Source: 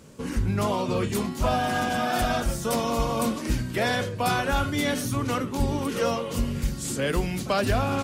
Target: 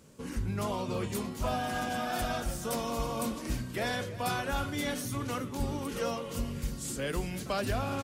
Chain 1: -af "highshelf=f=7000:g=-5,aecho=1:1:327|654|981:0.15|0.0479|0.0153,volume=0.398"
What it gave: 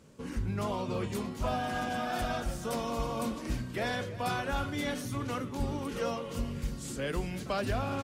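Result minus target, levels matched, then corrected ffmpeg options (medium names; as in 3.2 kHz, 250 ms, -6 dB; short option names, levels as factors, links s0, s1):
8 kHz band -4.5 dB
-af "highshelf=f=7000:g=4,aecho=1:1:327|654|981:0.15|0.0479|0.0153,volume=0.398"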